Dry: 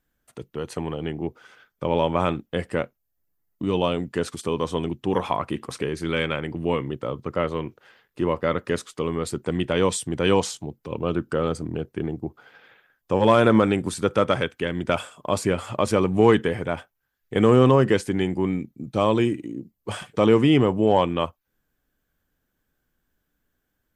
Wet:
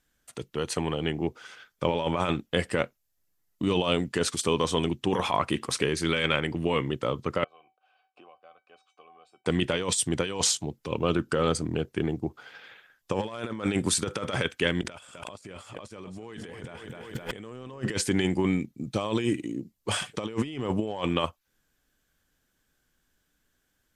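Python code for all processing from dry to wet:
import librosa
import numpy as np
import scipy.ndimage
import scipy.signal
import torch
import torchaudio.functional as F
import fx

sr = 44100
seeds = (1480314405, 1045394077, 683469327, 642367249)

y = fx.chain(x, sr, fx.vowel_filter(vowel='a'),
    fx.comb_fb(f0_hz=760.0, decay_s=0.18, harmonics='all', damping=0.0, mix_pct=90),
    fx.band_squash(depth_pct=100), at=(7.44, 9.46))
y = fx.chain(y, sr, fx.echo_feedback(ms=257, feedback_pct=35, wet_db=-17.0),
    fx.env_flatten(amount_pct=100), at=(14.82, 17.82))
y = scipy.signal.sosfilt(scipy.signal.butter(2, 10000.0, 'lowpass', fs=sr, output='sos'), y)
y = fx.high_shelf(y, sr, hz=2100.0, db=10.5)
y = fx.over_compress(y, sr, threshold_db=-22.0, ratio=-0.5)
y = F.gain(torch.from_numpy(y), -6.0).numpy()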